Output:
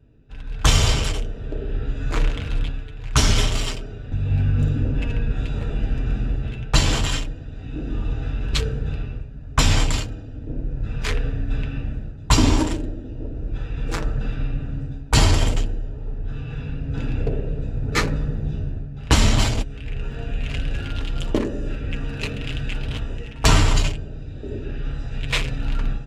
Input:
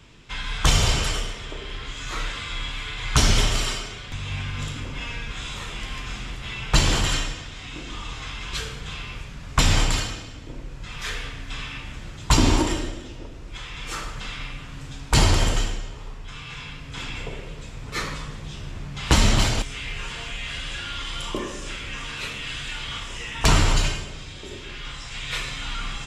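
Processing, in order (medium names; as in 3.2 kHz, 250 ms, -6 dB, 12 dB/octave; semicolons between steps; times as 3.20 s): local Wiener filter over 41 samples; level rider gain up to 14 dB; comb of notches 180 Hz; trim -1 dB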